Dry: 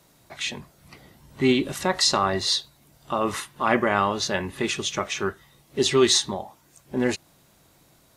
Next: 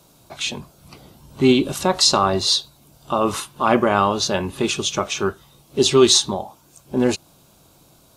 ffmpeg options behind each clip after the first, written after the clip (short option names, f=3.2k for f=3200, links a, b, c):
-af "equalizer=f=1.9k:w=4.1:g=-14.5,volume=5.5dB"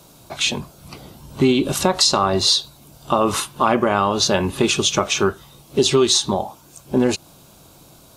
-af "acompressor=threshold=-18dB:ratio=6,volume=5.5dB"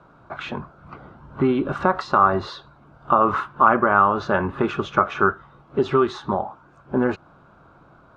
-af "lowpass=f=1.4k:t=q:w=3.9,volume=-4dB"